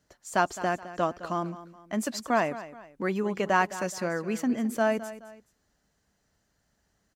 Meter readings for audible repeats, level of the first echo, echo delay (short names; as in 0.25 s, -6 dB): 2, -15.0 dB, 0.212 s